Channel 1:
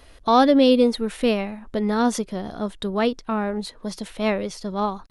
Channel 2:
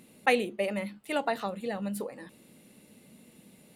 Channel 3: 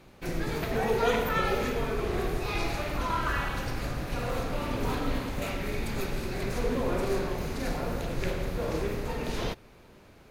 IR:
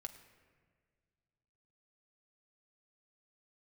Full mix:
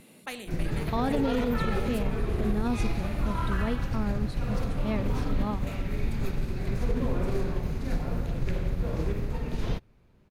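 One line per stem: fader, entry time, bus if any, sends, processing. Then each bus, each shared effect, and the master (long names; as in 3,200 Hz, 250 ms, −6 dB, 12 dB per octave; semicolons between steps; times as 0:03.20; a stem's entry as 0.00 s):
−12.0 dB, 0.65 s, no send, no processing
−12.0 dB, 0.00 s, no send, Bessel high-pass filter 320 Hz, order 2; every bin compressed towards the loudest bin 2 to 1
−1.0 dB, 0.25 s, no send, expander for the loud parts 1.5 to 1, over −48 dBFS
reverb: not used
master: bass and treble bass +11 dB, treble −3 dB; brickwall limiter −18 dBFS, peak gain reduction 9 dB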